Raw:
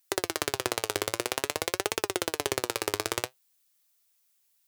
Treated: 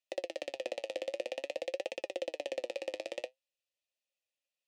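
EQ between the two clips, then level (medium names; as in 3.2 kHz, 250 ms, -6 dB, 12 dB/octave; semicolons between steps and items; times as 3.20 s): vowel filter e; low-pass 9.4 kHz 12 dB/octave; static phaser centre 420 Hz, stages 6; +7.5 dB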